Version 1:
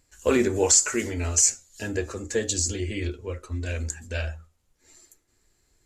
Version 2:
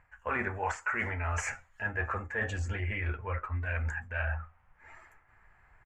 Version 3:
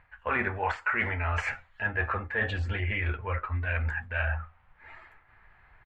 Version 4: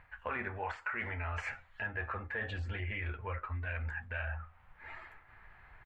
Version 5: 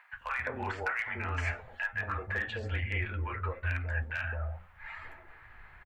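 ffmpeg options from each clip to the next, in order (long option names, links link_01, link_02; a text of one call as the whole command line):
ffmpeg -i in.wav -af "firequalizer=gain_entry='entry(140,0);entry(310,-14);entry(790,10);entry(1700,10);entry(2400,2);entry(4000,-25);entry(7200,-27)':delay=0.05:min_phase=1,areverse,acompressor=threshold=-36dB:ratio=6,areverse,volume=5.5dB" out.wav
ffmpeg -i in.wav -af "highshelf=frequency=5100:width_type=q:width=3:gain=-10,volume=3dB" out.wav
ffmpeg -i in.wav -af "acompressor=threshold=-41dB:ratio=2.5,volume=1dB" out.wav
ffmpeg -i in.wav -filter_complex "[0:a]volume=28.5dB,asoftclip=hard,volume=-28.5dB,acrossover=split=190|750[link_01][link_02][link_03];[link_01]adelay=130[link_04];[link_02]adelay=210[link_05];[link_04][link_05][link_03]amix=inputs=3:normalize=0,volume=5dB" out.wav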